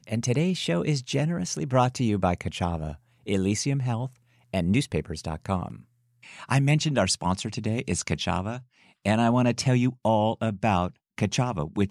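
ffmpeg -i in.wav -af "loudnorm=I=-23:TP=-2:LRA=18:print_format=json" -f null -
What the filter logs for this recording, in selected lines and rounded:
"input_i" : "-25.9",
"input_tp" : "-9.0",
"input_lra" : "2.9",
"input_thresh" : "-36.3",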